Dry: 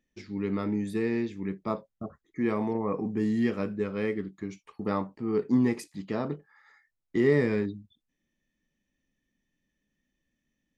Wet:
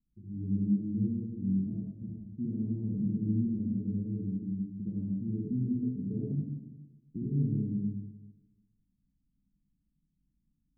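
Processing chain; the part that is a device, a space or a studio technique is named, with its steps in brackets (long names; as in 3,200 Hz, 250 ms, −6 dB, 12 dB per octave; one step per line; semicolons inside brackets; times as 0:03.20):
club heard from the street (brickwall limiter −19.5 dBFS, peak gain reduction 8 dB; low-pass filter 210 Hz 24 dB per octave; convolution reverb RT60 1.2 s, pre-delay 58 ms, DRR −4.5 dB)
0:05.83–0:06.32: parametric band 430 Hz +14.5 dB 0.26 octaves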